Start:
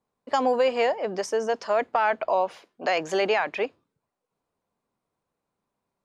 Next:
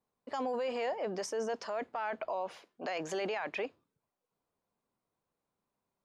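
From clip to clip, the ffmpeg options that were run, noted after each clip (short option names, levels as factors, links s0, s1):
-af "alimiter=limit=0.075:level=0:latency=1:release=15,volume=0.562"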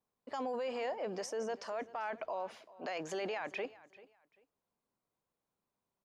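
-af "aecho=1:1:391|782:0.106|0.0254,volume=0.708"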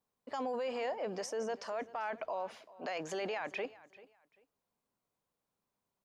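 -af "equalizer=f=350:t=o:w=0.21:g=-3,volume=1.12"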